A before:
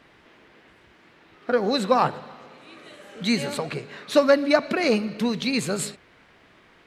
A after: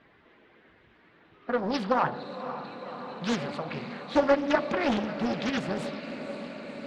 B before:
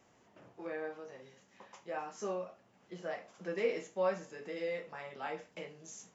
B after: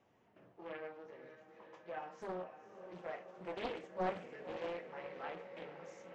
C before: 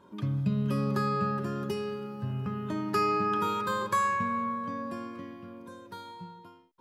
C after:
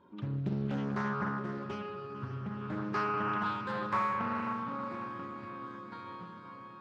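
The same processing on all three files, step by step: bin magnitudes rounded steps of 15 dB; LPF 3200 Hz 12 dB/oct; dynamic EQ 440 Hz, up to -7 dB, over -46 dBFS, Q 6.8; de-hum 66.39 Hz, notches 16; on a send: diffused feedback echo 0.522 s, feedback 75%, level -11 dB; on the sum: Doppler distortion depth 0.69 ms; gain -4 dB

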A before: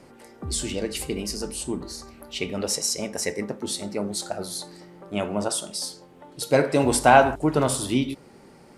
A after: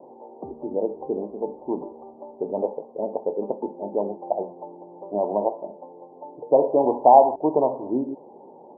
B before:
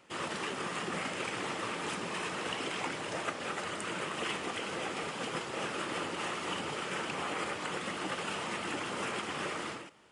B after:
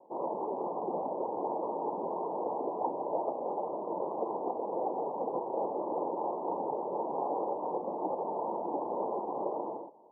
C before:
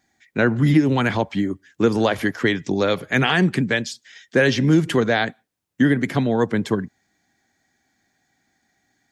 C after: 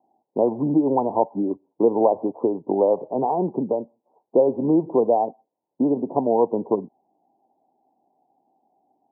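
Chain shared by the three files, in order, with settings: HPF 450 Hz 12 dB/oct; in parallel at +2.5 dB: compressor, threshold -29 dBFS; on the sum: steep low-pass 970 Hz 96 dB/oct; gain +2 dB

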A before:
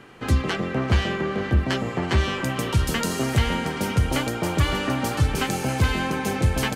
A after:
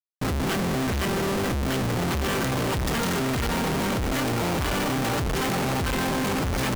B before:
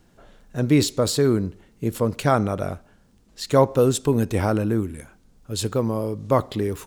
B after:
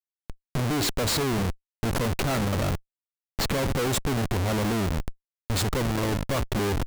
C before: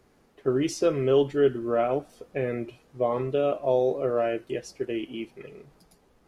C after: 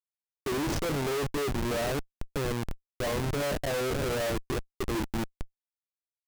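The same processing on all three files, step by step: crackle 68/s -37 dBFS; Schmitt trigger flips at -30.5 dBFS; gain -2 dB

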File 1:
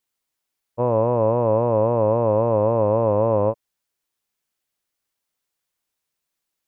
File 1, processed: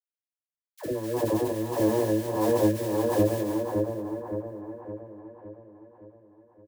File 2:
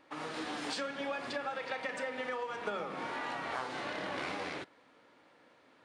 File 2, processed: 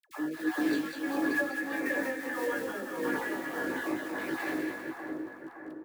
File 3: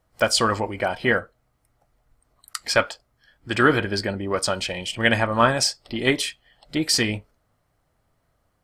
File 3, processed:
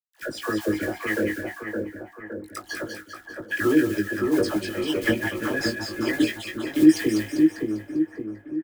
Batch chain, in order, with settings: random spectral dropouts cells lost 35%; high shelf 3500 Hz -12 dB; compressor 6:1, threshold -29 dBFS; doubler 19 ms -4 dB; bit-crush 9-bit; modulation noise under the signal 14 dB; small resonant body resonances 320/1700 Hz, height 17 dB, ringing for 50 ms; tremolo 1.6 Hz, depth 65%; dispersion lows, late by 85 ms, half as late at 670 Hz; on a send: split-band echo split 1600 Hz, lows 0.565 s, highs 0.198 s, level -4 dB; on the sum: gain +2.5 dB

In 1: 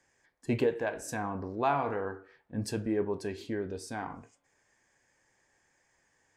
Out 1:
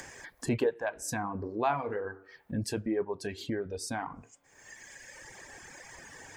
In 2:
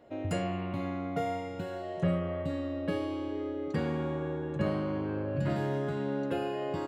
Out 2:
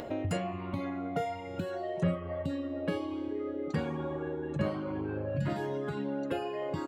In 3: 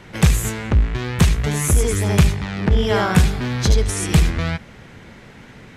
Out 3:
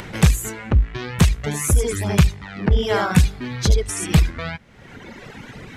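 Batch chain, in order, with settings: reverb removal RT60 1.6 s; upward compressor, threshold -28 dBFS

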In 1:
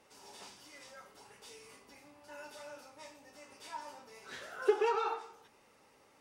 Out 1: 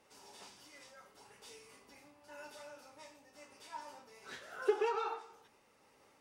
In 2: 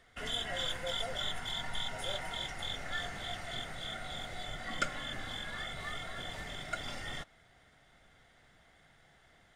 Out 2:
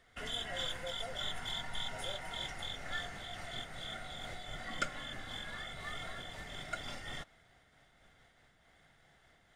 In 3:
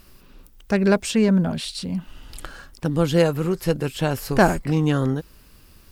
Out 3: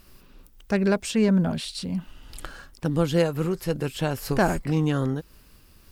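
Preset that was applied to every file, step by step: noise-modulated level, depth 50%

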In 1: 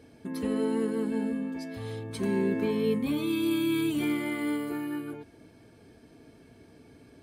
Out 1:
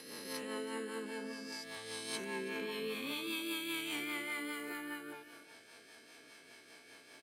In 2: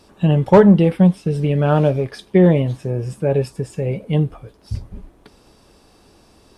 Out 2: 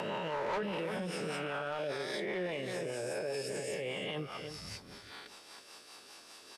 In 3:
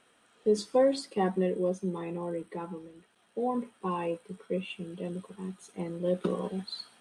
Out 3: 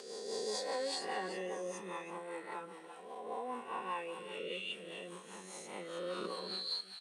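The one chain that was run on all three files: spectral swells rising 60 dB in 1.55 s; HPF 1400 Hz 12 dB/oct; tilt -4.5 dB/oct; echo 0.324 s -13 dB; rotary speaker horn 5 Hz; high shelf 4400 Hz +11.5 dB; soft clip -19.5 dBFS; limiter -30.5 dBFS; compressor 1.5:1, threshold -45 dBFS; mismatched tape noise reduction encoder only; gain +5 dB

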